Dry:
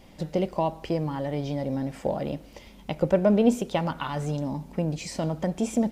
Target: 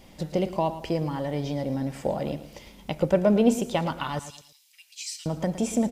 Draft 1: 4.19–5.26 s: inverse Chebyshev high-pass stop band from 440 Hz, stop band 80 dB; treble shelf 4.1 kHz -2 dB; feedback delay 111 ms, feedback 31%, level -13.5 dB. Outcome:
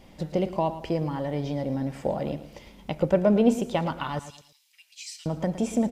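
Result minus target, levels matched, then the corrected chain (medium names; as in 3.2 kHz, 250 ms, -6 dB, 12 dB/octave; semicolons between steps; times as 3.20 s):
8 kHz band -5.5 dB
4.19–5.26 s: inverse Chebyshev high-pass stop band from 440 Hz, stop band 80 dB; treble shelf 4.1 kHz +5 dB; feedback delay 111 ms, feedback 31%, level -13.5 dB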